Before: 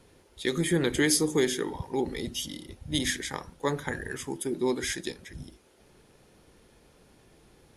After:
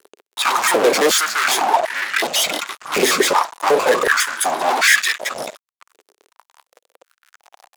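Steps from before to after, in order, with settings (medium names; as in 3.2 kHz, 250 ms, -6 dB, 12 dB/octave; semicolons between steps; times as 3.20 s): pitch shift switched off and on -6.5 st, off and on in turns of 84 ms; fuzz box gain 42 dB, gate -51 dBFS; step-sequenced high-pass 2.7 Hz 410–1800 Hz; trim -2 dB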